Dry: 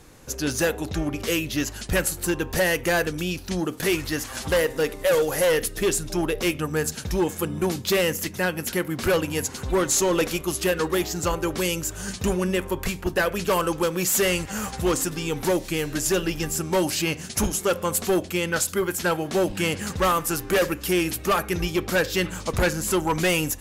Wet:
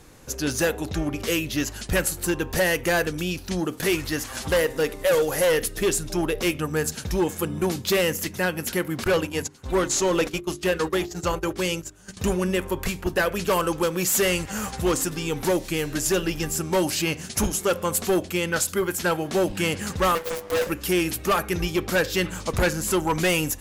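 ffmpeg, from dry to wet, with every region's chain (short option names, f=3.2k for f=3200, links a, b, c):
-filter_complex "[0:a]asettb=1/sr,asplit=3[a][b][c];[a]atrim=end=9.044[d];[b]atrim=start=9.04:end=12.17,asetpts=PTS-STARTPTS,afade=t=in:d=0.004:c=qsin,afade=t=out:st=3.126:d=0.004:c=qsin,acrossover=split=8100[e][f];[f]acompressor=threshold=-41dB:ratio=4:attack=1:release=60[g];[e][g]amix=inputs=2:normalize=0,agate=range=-18dB:threshold=-30dB:ratio=16:release=100:detection=peak,bandreject=f=50:t=h:w=6,bandreject=f=100:t=h:w=6,bandreject=f=150:t=h:w=6,bandreject=f=200:t=h:w=6,bandreject=f=250:t=h:w=6,bandreject=f=300:t=h:w=6,bandreject=f=350:t=h:w=6,bandreject=f=400:t=h:w=6[h];[c]atrim=start=12.166[i];[d][h]acrossfade=d=0.004:c1=hsin:c2=qsin[j];[j][i]acrossfade=d=0.004:c1=qsin:c2=hsin,asettb=1/sr,asplit=3[k][l][m];[k]atrim=end=20.154[n];[l]atrim=start=20.15:end=20.67,asetpts=PTS-STARTPTS,afade=t=in:d=0.004:c=qsin,afade=t=out:st=0.516:d=0.004:c=qsin,highpass=f=82:w=0.5412,highpass=f=82:w=1.3066,aeval=exprs='abs(val(0))':c=same,aeval=exprs='val(0)*sin(2*PI*490*n/s)':c=same[o];[m]atrim=start=20.666[p];[n][o]acrossfade=d=0.004:c1=hsin:c2=qsin[q];[q][p]acrossfade=d=0.004:c1=qsin:c2=hsin"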